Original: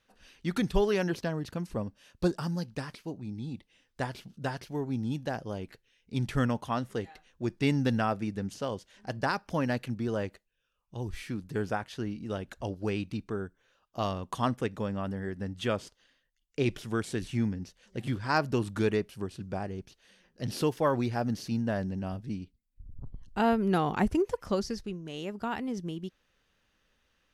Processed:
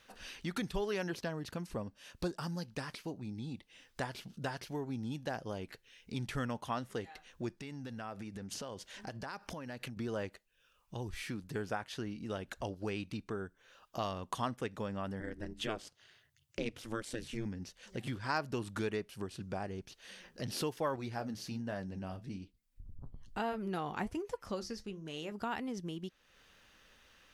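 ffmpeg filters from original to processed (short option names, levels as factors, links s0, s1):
-filter_complex "[0:a]asettb=1/sr,asplit=3[s0][s1][s2];[s0]atrim=end=7.594[s3];[s1]atrim=start=7.59:end=9.97,asetpts=PTS-STARTPTS,afade=t=in:d=0.004:c=qsin,afade=t=out:st=2.376:d=0.004:c=qsin,acompressor=threshold=0.0112:ratio=12:attack=3.2:release=140:knee=1:detection=peak[s4];[s2]atrim=start=9.966[s5];[s3][s4]acrossfade=d=0.004:c1=hsin:c2=qsin[s6];[s6][s5]acrossfade=d=0.004:c1=qsin:c2=hsin,asettb=1/sr,asplit=3[s7][s8][s9];[s7]atrim=end=15.204[s10];[s8]atrim=start=15.2:end=17.46,asetpts=PTS-STARTPTS,afade=t=in:d=0.004:c=qsin,afade=t=out:st=2.256:d=0.004:c=qsin,aeval=exprs='val(0)*sin(2*PI*110*n/s)':c=same[s11];[s9]atrim=start=17.456[s12];[s10][s11]acrossfade=d=0.004:c1=hsin:c2=qsin[s13];[s13][s12]acrossfade=d=0.004:c1=qsin:c2=hsin,asettb=1/sr,asplit=3[s14][s15][s16];[s14]atrim=end=20.964[s17];[s15]atrim=start=20.96:end=25.32,asetpts=PTS-STARTPTS,afade=t=in:d=0.004:c=qsin,afade=t=out:st=4.356:d=0.004:c=qsin,flanger=delay=6.1:depth=6.9:regen=-60:speed=1.2:shape=sinusoidal[s18];[s16]atrim=start=25.316[s19];[s17][s18]acrossfade=d=0.004:c1=hsin:c2=qsin[s20];[s20][s19]acrossfade=d=0.004:c1=qsin:c2=hsin,acompressor=threshold=0.002:ratio=2,lowshelf=f=460:g=-5.5,volume=3.35"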